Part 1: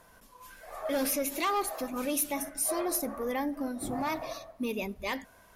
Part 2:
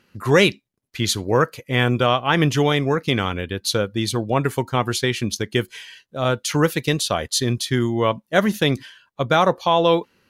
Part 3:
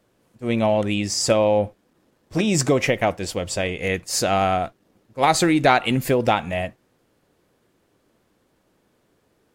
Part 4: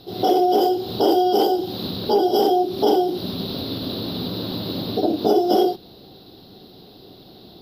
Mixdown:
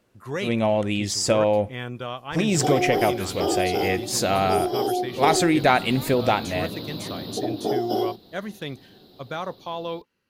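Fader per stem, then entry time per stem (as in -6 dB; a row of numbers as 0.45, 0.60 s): -10.0, -14.5, -2.0, -7.0 dB; 1.95, 0.00, 0.00, 2.40 s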